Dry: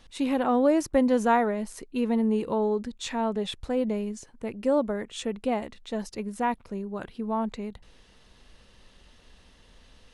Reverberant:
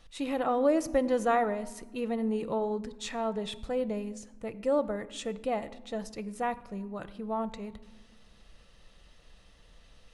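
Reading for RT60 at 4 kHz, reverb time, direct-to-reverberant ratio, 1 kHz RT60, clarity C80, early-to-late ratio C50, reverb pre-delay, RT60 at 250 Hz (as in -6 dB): 0.75 s, 1.2 s, 10.5 dB, 1.2 s, 18.0 dB, 16.5 dB, 6 ms, 1.9 s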